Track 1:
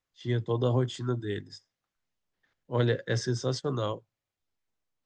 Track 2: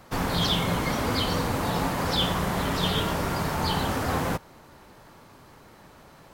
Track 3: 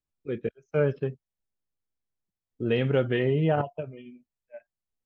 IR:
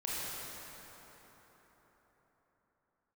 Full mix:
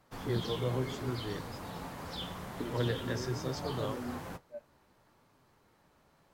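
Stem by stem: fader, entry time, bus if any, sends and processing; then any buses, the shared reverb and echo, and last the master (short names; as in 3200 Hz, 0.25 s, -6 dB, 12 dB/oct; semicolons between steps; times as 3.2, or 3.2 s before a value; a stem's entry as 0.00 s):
-3.0 dB, 0.00 s, no send, dry
-12.0 dB, 0.00 s, no send, dry
+1.5 dB, 0.00 s, no send, negative-ratio compressor -35 dBFS, ratio -1; band-pass 280 Hz, Q 1.3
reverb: off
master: flange 0.75 Hz, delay 6.4 ms, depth 8 ms, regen -56%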